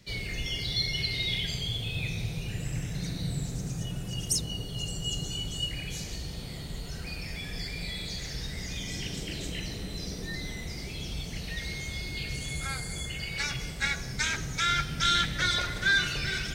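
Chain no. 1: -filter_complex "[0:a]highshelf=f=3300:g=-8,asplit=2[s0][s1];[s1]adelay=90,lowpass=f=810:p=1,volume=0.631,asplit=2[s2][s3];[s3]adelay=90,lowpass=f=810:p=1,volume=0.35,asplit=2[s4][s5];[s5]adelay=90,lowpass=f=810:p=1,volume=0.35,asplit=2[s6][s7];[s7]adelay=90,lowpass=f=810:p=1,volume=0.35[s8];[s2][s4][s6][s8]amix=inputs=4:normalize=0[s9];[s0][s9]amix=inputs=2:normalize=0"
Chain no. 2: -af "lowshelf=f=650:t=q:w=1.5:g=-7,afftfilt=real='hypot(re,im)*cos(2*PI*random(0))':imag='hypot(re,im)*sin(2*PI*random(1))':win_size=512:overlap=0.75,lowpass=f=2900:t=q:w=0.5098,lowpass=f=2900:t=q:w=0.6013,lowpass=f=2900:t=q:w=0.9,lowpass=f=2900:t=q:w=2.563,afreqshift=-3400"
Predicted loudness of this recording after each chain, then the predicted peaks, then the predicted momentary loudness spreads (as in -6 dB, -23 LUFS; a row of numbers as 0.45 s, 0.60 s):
-33.0 LUFS, -40.0 LUFS; -14.0 dBFS, -18.0 dBFS; 10 LU, 13 LU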